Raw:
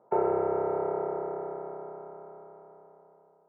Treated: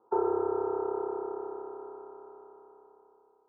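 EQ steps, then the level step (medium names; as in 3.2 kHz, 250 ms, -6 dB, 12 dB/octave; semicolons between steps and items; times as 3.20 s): steep low-pass 1.7 kHz 36 dB/octave; static phaser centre 620 Hz, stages 6; 0.0 dB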